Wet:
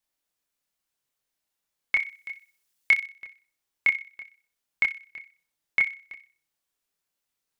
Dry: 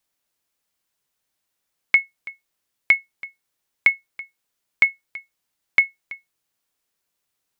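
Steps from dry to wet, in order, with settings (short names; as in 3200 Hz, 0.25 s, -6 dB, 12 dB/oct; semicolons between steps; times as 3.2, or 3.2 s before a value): 1.96–2.97 high shelf 3000 Hz +9.5 dB; chorus voices 6, 0.77 Hz, delay 27 ms, depth 3.9 ms; thin delay 62 ms, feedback 33%, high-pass 2000 Hz, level -10 dB; gain -2.5 dB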